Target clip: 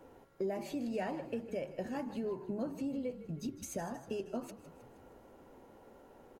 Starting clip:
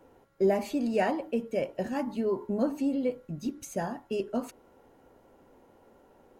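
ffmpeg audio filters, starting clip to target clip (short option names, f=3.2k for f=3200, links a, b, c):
-filter_complex "[0:a]acompressor=threshold=-41dB:ratio=2.5,asplit=7[a][b][c][d][e][f][g];[b]adelay=157,afreqshift=-40,volume=-14dB[h];[c]adelay=314,afreqshift=-80,volume=-18.9dB[i];[d]adelay=471,afreqshift=-120,volume=-23.8dB[j];[e]adelay=628,afreqshift=-160,volume=-28.6dB[k];[f]adelay=785,afreqshift=-200,volume=-33.5dB[l];[g]adelay=942,afreqshift=-240,volume=-38.4dB[m];[a][h][i][j][k][l][m]amix=inputs=7:normalize=0,volume=1dB"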